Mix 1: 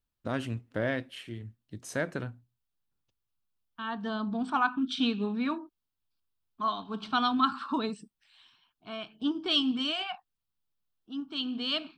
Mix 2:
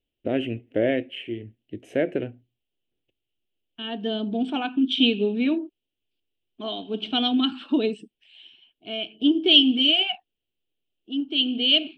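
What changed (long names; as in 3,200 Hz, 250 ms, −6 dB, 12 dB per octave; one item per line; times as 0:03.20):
first voice: add high shelf with overshoot 3,000 Hz −9.5 dB, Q 1.5
master: add drawn EQ curve 170 Hz 0 dB, 360 Hz +14 dB, 700 Hz +6 dB, 1,100 Hz −16 dB, 3,000 Hz +15 dB, 4,400 Hz −4 dB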